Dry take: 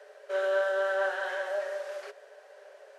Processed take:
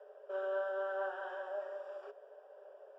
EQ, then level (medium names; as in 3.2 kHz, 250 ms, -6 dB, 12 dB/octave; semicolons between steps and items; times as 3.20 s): dynamic bell 510 Hz, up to -7 dB, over -43 dBFS, Q 1.7; boxcar filter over 21 samples; -2.0 dB